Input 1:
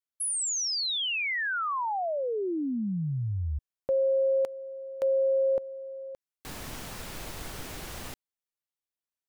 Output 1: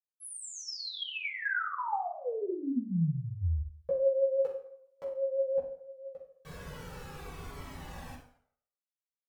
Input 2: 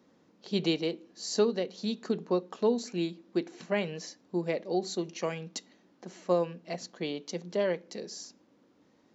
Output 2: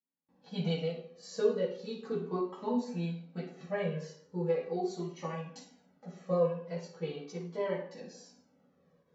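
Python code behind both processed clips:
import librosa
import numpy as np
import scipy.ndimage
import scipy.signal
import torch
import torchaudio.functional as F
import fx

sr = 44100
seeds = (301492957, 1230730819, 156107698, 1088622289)

y = fx.gate_hold(x, sr, open_db=-54.0, close_db=-62.0, hold_ms=297.0, range_db=-33, attack_ms=0.15, release_ms=106.0)
y = fx.high_shelf(y, sr, hz=2700.0, db=-11.5)
y = fx.vibrato(y, sr, rate_hz=6.0, depth_cents=26.0)
y = fx.rev_fdn(y, sr, rt60_s=0.64, lf_ratio=0.8, hf_ratio=0.75, size_ms=36.0, drr_db=-8.0)
y = fx.comb_cascade(y, sr, direction='falling', hz=0.39)
y = F.gain(torch.from_numpy(y), -6.0).numpy()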